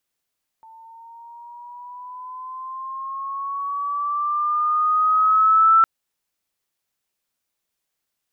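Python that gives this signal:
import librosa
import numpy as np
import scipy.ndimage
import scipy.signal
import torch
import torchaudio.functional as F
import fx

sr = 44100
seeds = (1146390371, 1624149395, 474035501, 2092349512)

y = fx.riser_tone(sr, length_s=5.21, level_db=-10.0, wave='sine', hz=890.0, rise_st=7.0, swell_db=32.5)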